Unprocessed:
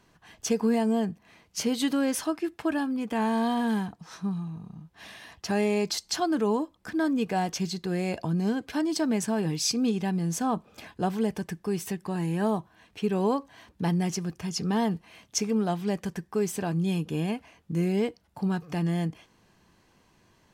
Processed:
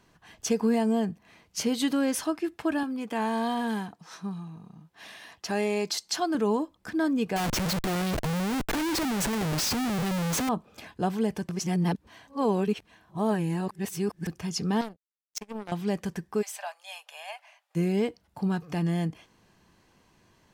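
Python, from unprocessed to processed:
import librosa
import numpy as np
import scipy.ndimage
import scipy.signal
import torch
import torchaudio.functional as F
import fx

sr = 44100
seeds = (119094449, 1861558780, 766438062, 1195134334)

y = fx.highpass(x, sr, hz=270.0, slope=6, at=(2.83, 6.35))
y = fx.schmitt(y, sr, flips_db=-39.5, at=(7.36, 10.49))
y = fx.power_curve(y, sr, exponent=3.0, at=(14.81, 15.72))
y = fx.cheby_ripple_highpass(y, sr, hz=580.0, ripple_db=3, at=(16.41, 17.75), fade=0.02)
y = fx.edit(y, sr, fx.reverse_span(start_s=11.49, length_s=2.78), tone=tone)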